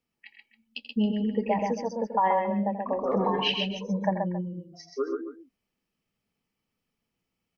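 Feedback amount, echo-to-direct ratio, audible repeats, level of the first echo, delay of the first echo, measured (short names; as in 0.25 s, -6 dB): no steady repeat, -3.0 dB, 3, -12.0 dB, 84 ms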